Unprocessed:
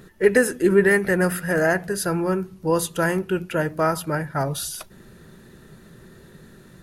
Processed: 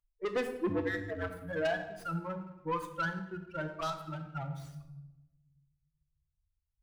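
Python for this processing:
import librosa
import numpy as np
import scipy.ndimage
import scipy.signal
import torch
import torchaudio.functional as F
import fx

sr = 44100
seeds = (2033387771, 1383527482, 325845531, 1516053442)

p1 = fx.bin_expand(x, sr, power=3.0)
p2 = fx.high_shelf_res(p1, sr, hz=2000.0, db=-13.0, q=3.0)
p3 = fx.level_steps(p2, sr, step_db=20)
p4 = p2 + (p3 * 10.0 ** (-1.5 / 20.0))
p5 = fx.ring_mod(p4, sr, carrier_hz=92.0, at=(0.69, 1.3))
p6 = 10.0 ** (-20.0 / 20.0) * np.tanh(p5 / 10.0 ** (-20.0 / 20.0))
p7 = fx.env_phaser(p6, sr, low_hz=280.0, high_hz=2300.0, full_db=-22.0, at=(3.69, 4.51))
p8 = fx.room_shoebox(p7, sr, seeds[0], volume_m3=480.0, walls='mixed', distance_m=0.76)
p9 = fx.running_max(p8, sr, window=3)
y = p9 * 10.0 ** (-8.0 / 20.0)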